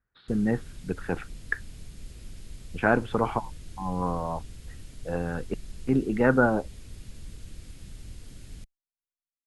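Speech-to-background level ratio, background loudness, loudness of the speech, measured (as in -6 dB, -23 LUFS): 18.0 dB, -46.5 LUFS, -28.5 LUFS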